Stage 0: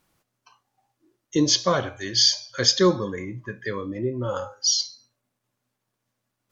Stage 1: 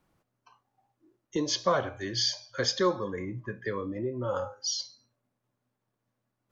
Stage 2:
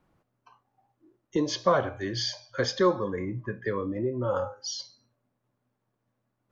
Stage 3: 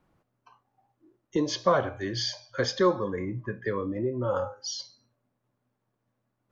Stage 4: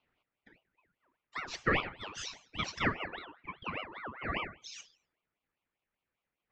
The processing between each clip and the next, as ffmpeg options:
-filter_complex "[0:a]highshelf=f=2100:g=-12,acrossover=split=490|610[s0][s1][s2];[s0]acompressor=threshold=0.0224:ratio=6[s3];[s3][s1][s2]amix=inputs=3:normalize=0"
-af "highshelf=f=3300:g=-10,volume=1.5"
-af anull
-af "highpass=690,lowpass=3000,aeval=exprs='val(0)*sin(2*PI*1200*n/s+1200*0.5/5*sin(2*PI*5*n/s))':c=same"

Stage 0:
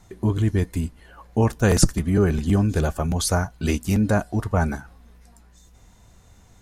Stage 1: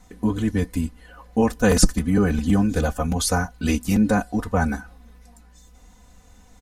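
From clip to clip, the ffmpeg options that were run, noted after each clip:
-af "aecho=1:1:4:0.87,volume=0.891"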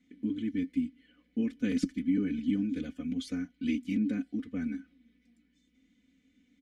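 -filter_complex "[0:a]asplit=3[s0][s1][s2];[s0]bandpass=f=270:t=q:w=8,volume=1[s3];[s1]bandpass=f=2290:t=q:w=8,volume=0.501[s4];[s2]bandpass=f=3010:t=q:w=8,volume=0.355[s5];[s3][s4][s5]amix=inputs=3:normalize=0"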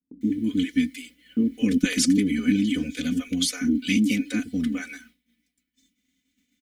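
-filter_complex "[0:a]acrossover=split=500[s0][s1];[s1]adelay=210[s2];[s0][s2]amix=inputs=2:normalize=0,crystalizer=i=5.5:c=0,agate=range=0.0224:threshold=0.002:ratio=3:detection=peak,volume=2.66"

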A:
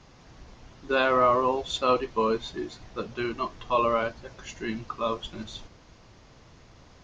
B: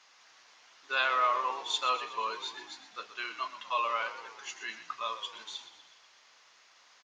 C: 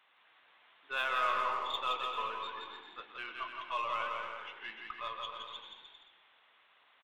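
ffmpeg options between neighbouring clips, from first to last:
-filter_complex "[0:a]highpass=1300,asplit=2[s0][s1];[s1]asplit=6[s2][s3][s4][s5][s6][s7];[s2]adelay=122,afreqshift=-46,volume=0.237[s8];[s3]adelay=244,afreqshift=-92,volume=0.138[s9];[s4]adelay=366,afreqshift=-138,volume=0.0794[s10];[s5]adelay=488,afreqshift=-184,volume=0.0462[s11];[s6]adelay=610,afreqshift=-230,volume=0.0269[s12];[s7]adelay=732,afreqshift=-276,volume=0.0155[s13];[s8][s9][s10][s11][s12][s13]amix=inputs=6:normalize=0[s14];[s0][s14]amix=inputs=2:normalize=0"
-af "aresample=8000,aresample=44100,aeval=exprs='0.15*(cos(1*acos(clip(val(0)/0.15,-1,1)))-cos(1*PI/2))+0.00299*(cos(6*acos(clip(val(0)/0.15,-1,1)))-cos(6*PI/2))+0.00531*(cos(8*acos(clip(val(0)/0.15,-1,1)))-cos(8*PI/2))':c=same,aecho=1:1:170|297.5|393.1|464.8|518.6:0.631|0.398|0.251|0.158|0.1,volume=0.531"

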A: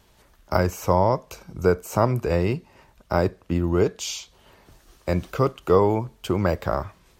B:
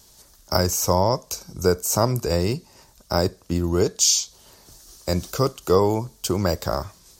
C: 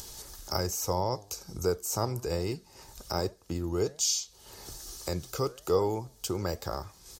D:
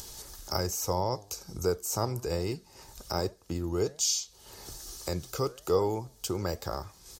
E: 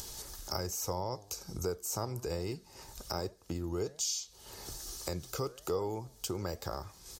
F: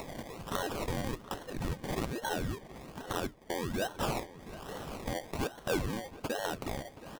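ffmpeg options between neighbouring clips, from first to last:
-af "highshelf=f=3700:t=q:w=1.5:g=12.5"
-af "aecho=1:1:2.4:0.31,acompressor=mode=upward:threshold=0.1:ratio=2.5,flanger=delay=2.8:depth=7.5:regen=89:speed=1.2:shape=triangular,volume=0.531"
-af anull
-af "acompressor=threshold=0.0158:ratio=2"
-filter_complex "[0:a]afftfilt=real='real(if(between(b,1,1012),(2*floor((b-1)/92)+1)*92-b,b),0)':imag='imag(if(between(b,1,1012),(2*floor((b-1)/92)+1)*92-b,b),0)*if(between(b,1,1012),-1,1)':win_size=2048:overlap=0.75,acrusher=samples=26:mix=1:aa=0.000001:lfo=1:lforange=15.6:lforate=1.2,asplit=2[s0][s1];[s1]adelay=725,lowpass=f=3100:p=1,volume=0.158,asplit=2[s2][s3];[s3]adelay=725,lowpass=f=3100:p=1,volume=0.24[s4];[s0][s2][s4]amix=inputs=3:normalize=0,volume=1.19"

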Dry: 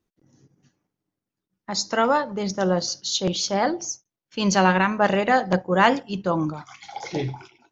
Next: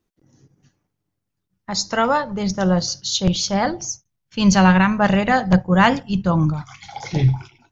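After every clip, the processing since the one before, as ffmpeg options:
-af "asubboost=boost=9.5:cutoff=120,volume=1.41"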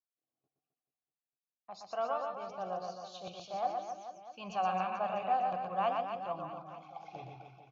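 -filter_complex "[0:a]agate=range=0.224:threshold=0.00282:ratio=16:detection=peak,asplit=3[s0][s1][s2];[s0]bandpass=f=730:t=q:w=8,volume=1[s3];[s1]bandpass=f=1090:t=q:w=8,volume=0.501[s4];[s2]bandpass=f=2440:t=q:w=8,volume=0.355[s5];[s3][s4][s5]amix=inputs=3:normalize=0,aecho=1:1:120|264|436.8|644.2|893:0.631|0.398|0.251|0.158|0.1,volume=0.398"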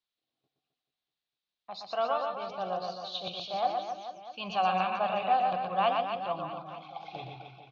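-af "lowpass=f=3800:t=q:w=3.8,volume=1.68"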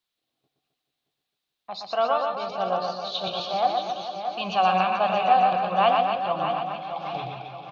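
-af "aecho=1:1:624|1248|1872|2496|3120:0.355|0.149|0.0626|0.0263|0.011,volume=2.11"

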